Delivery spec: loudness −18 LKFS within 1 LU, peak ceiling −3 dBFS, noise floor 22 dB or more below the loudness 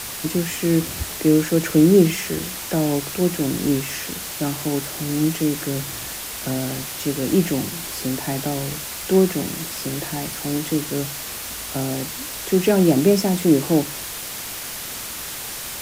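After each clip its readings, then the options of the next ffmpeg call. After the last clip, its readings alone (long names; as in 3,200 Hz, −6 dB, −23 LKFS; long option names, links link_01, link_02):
background noise floor −32 dBFS; target noise floor −44 dBFS; integrated loudness −22.0 LKFS; sample peak −3.0 dBFS; target loudness −18.0 LKFS
→ -af "afftdn=noise_reduction=12:noise_floor=-32"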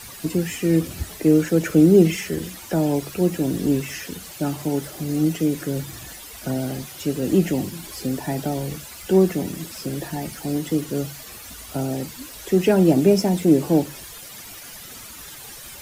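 background noise floor −40 dBFS; target noise floor −44 dBFS
→ -af "afftdn=noise_reduction=6:noise_floor=-40"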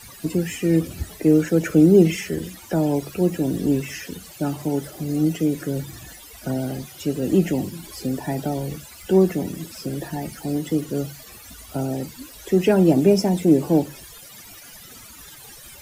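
background noise floor −43 dBFS; target noise floor −44 dBFS
→ -af "afftdn=noise_reduction=6:noise_floor=-43"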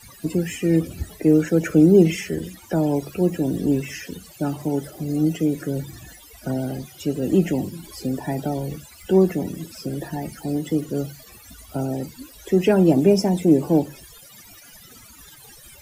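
background noise floor −47 dBFS; integrated loudness −22.0 LKFS; sample peak −3.5 dBFS; target loudness −18.0 LKFS
→ -af "volume=4dB,alimiter=limit=-3dB:level=0:latency=1"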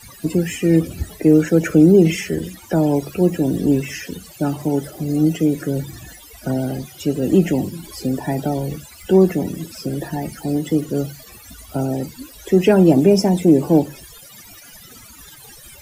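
integrated loudness −18.5 LKFS; sample peak −3.0 dBFS; background noise floor −43 dBFS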